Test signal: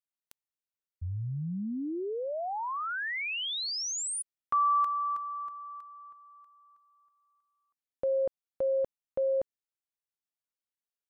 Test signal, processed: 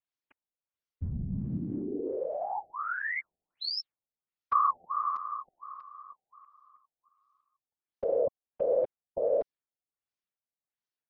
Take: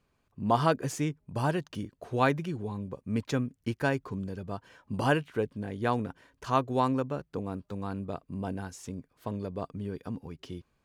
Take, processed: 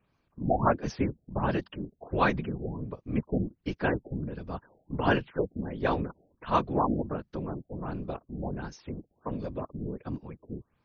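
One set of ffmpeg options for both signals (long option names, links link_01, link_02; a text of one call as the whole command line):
ffmpeg -i in.wav -af "afftfilt=real='hypot(re,im)*cos(2*PI*random(0))':imag='hypot(re,im)*sin(2*PI*random(1))':win_size=512:overlap=0.75,afftfilt=real='re*lt(b*sr/1024,780*pow(6700/780,0.5+0.5*sin(2*PI*1.4*pts/sr)))':imag='im*lt(b*sr/1024,780*pow(6700/780,0.5+0.5*sin(2*PI*1.4*pts/sr)))':win_size=1024:overlap=0.75,volume=6.5dB" out.wav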